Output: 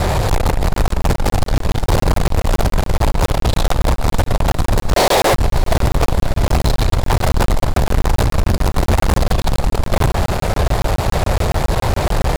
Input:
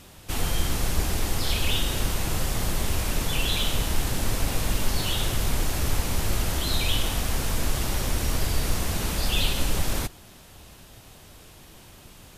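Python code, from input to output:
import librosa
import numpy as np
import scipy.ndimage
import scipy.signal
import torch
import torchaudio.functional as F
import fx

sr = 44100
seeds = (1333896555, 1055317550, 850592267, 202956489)

y = fx.ellip_highpass(x, sr, hz=240.0, order=4, stop_db=40, at=(4.93, 5.33), fade=0.02)
y = fx.over_compress(y, sr, threshold_db=-29.0, ratio=-0.5)
y = scipy.signal.lfilter(np.full(15, 1.0 / 15), 1.0, y)
y = fx.fixed_phaser(y, sr, hz=660.0, stages=4)
y = fx.fuzz(y, sr, gain_db=50.0, gate_db=-51.0)
y = fx.vibrato(y, sr, rate_hz=2.0, depth_cents=6.9)
y = fx.echo_diffused(y, sr, ms=581, feedback_pct=67, wet_db=-15.5)
y = fx.buffer_crackle(y, sr, first_s=0.74, period_s=0.14, block=1024, kind='zero')
y = F.gain(torch.from_numpy(y), 2.0).numpy()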